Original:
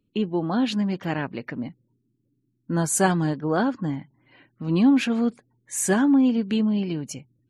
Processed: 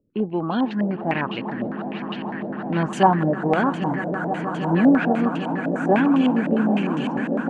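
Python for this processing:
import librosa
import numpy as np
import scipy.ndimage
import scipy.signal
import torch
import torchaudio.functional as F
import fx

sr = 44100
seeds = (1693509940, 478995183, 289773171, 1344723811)

y = fx.echo_swell(x, sr, ms=159, loudest=8, wet_db=-14.0)
y = fx.filter_held_lowpass(y, sr, hz=9.9, low_hz=590.0, high_hz=2900.0)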